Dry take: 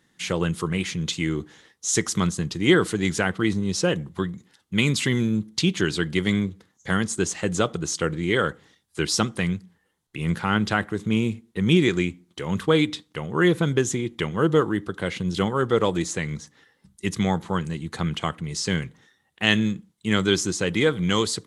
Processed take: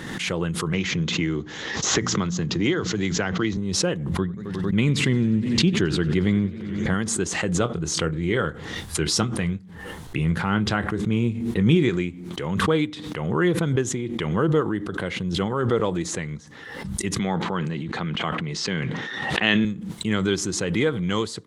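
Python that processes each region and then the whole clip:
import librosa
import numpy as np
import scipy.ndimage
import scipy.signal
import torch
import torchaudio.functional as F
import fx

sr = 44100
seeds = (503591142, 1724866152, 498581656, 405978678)

y = fx.chain(x, sr, fx.hum_notches(base_hz=60, count=4),
    fx.resample_bad(factor=3, down='none', up='filtered'),
    fx.band_squash(depth_pct=100), at=(0.73, 3.57))
y = fx.chain(y, sr, fx.tilt_eq(slope=-1.5),
    fx.echo_warbled(ms=90, feedback_pct=79, rate_hz=2.8, cents=133, wet_db=-20.0), at=(4.18, 6.94))
y = fx.chain(y, sr, fx.low_shelf(hz=120.0, db=7.0),
    fx.doubler(ms=25.0, db=-12), at=(7.6, 11.9))
y = fx.chain(y, sr, fx.bandpass_edges(low_hz=150.0, high_hz=3700.0),
    fx.high_shelf(hz=2500.0, db=6.5),
    fx.sustainer(db_per_s=20.0), at=(17.19, 19.65))
y = fx.high_shelf(y, sr, hz=3700.0, db=-9.0)
y = fx.pre_swell(y, sr, db_per_s=39.0)
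y = y * 10.0 ** (-2.0 / 20.0)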